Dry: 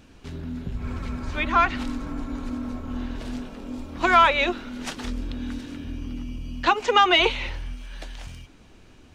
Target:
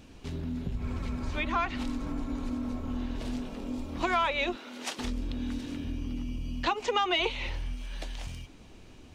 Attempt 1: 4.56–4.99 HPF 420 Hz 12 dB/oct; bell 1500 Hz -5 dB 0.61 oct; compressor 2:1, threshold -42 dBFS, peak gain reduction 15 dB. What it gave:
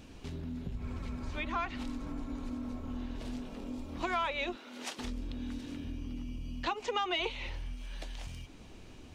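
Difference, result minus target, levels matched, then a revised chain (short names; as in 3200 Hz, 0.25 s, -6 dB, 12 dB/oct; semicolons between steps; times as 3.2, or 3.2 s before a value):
compressor: peak gain reduction +5.5 dB
4.56–4.99 HPF 420 Hz 12 dB/oct; bell 1500 Hz -5 dB 0.61 oct; compressor 2:1, threshold -31 dBFS, peak gain reduction 9.5 dB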